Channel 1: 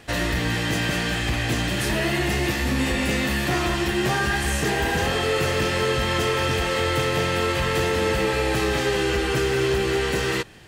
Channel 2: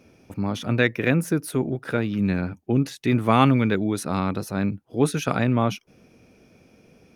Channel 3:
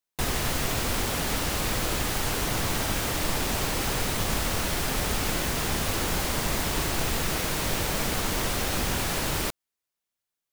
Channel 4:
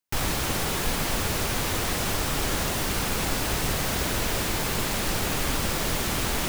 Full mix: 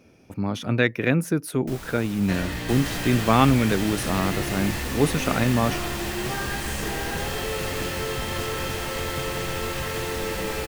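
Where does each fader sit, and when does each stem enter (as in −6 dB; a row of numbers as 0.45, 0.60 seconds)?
−7.5, −0.5, −6.5, −14.0 decibels; 2.20, 0.00, 2.50, 1.55 seconds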